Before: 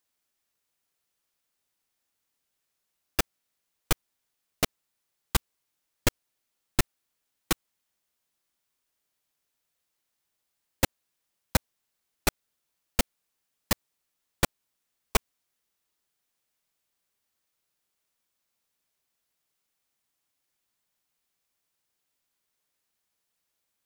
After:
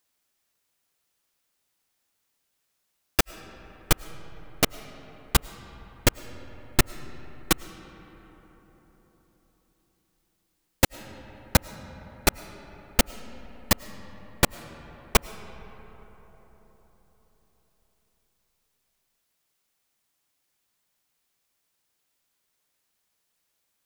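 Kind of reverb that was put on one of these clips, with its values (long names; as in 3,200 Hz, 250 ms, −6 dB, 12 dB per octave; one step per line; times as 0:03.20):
comb and all-pass reverb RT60 4.6 s, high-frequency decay 0.4×, pre-delay 65 ms, DRR 15.5 dB
level +4.5 dB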